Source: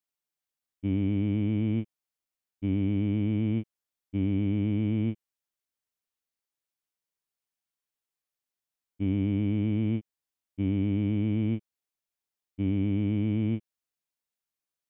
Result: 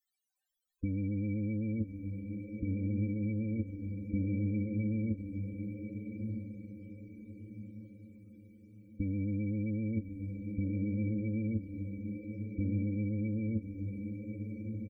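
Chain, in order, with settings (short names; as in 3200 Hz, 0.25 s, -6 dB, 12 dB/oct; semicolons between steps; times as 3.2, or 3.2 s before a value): negative-ratio compressor -32 dBFS, ratio -1; comb 3.9 ms, depth 66%; loudest bins only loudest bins 16; bell 270 Hz -14 dB 1.9 oct; diffused feedback echo 1.186 s, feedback 45%, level -6 dB; gain +8 dB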